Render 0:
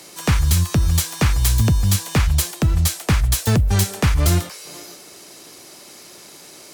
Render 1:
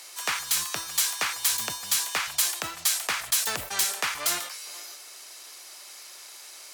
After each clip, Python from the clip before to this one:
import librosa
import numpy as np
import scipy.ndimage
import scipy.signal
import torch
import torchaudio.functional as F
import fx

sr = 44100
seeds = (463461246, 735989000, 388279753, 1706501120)

y = scipy.signal.sosfilt(scipy.signal.butter(2, 960.0, 'highpass', fs=sr, output='sos'), x)
y = fx.sustainer(y, sr, db_per_s=91.0)
y = F.gain(torch.from_numpy(y), -2.0).numpy()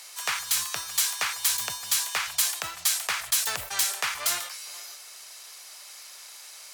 y = fx.peak_eq(x, sr, hz=270.0, db=-11.0, octaves=1.3)
y = fx.quant_float(y, sr, bits=4)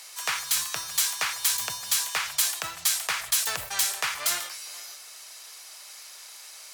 y = fx.room_shoebox(x, sr, seeds[0], volume_m3=3500.0, walls='furnished', distance_m=0.61)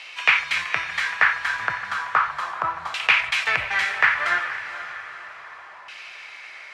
y = fx.quant_companded(x, sr, bits=6)
y = fx.filter_lfo_lowpass(y, sr, shape='saw_down', hz=0.34, low_hz=990.0, high_hz=2700.0, q=4.1)
y = fx.echo_diffused(y, sr, ms=497, feedback_pct=48, wet_db=-12.5)
y = F.gain(torch.from_numpy(y), 5.0).numpy()